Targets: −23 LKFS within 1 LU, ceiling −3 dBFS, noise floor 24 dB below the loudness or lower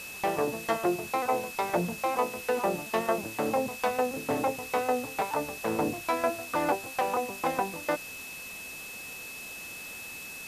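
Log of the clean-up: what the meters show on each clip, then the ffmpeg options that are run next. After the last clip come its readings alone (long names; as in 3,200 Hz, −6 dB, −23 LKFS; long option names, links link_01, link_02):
interfering tone 2,600 Hz; level of the tone −41 dBFS; background noise floor −42 dBFS; target noise floor −55 dBFS; integrated loudness −31.0 LKFS; sample peak −15.5 dBFS; target loudness −23.0 LKFS
→ -af "bandreject=frequency=2600:width=30"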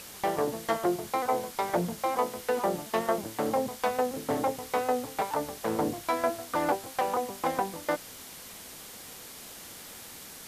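interfering tone none found; background noise floor −46 dBFS; target noise floor −55 dBFS
→ -af "afftdn=noise_reduction=9:noise_floor=-46"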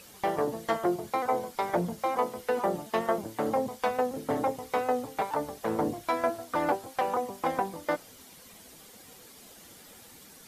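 background noise floor −52 dBFS; target noise floor −55 dBFS
→ -af "afftdn=noise_reduction=6:noise_floor=-52"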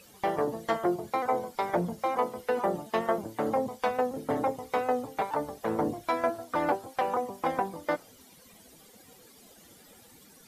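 background noise floor −56 dBFS; integrated loudness −30.5 LKFS; sample peak −16.0 dBFS; target loudness −23.0 LKFS
→ -af "volume=7.5dB"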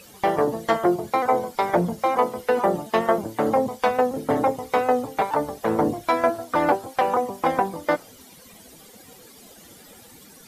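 integrated loudness −23.0 LKFS; sample peak −8.5 dBFS; background noise floor −48 dBFS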